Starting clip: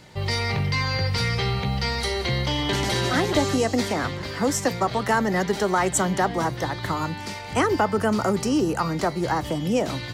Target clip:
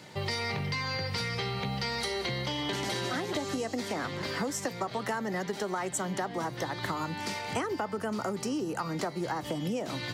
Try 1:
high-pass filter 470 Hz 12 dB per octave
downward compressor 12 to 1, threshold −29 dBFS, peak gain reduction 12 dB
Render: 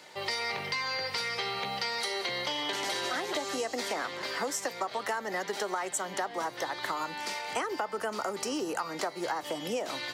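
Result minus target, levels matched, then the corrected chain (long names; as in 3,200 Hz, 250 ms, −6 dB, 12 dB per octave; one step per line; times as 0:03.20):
125 Hz band −15.0 dB
high-pass filter 140 Hz 12 dB per octave
downward compressor 12 to 1, threshold −29 dBFS, peak gain reduction 13.5 dB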